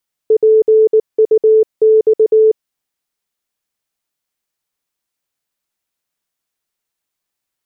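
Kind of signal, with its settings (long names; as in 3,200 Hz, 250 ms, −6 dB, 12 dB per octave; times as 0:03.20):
Morse code "PUX" 19 words per minute 437 Hz −5.5 dBFS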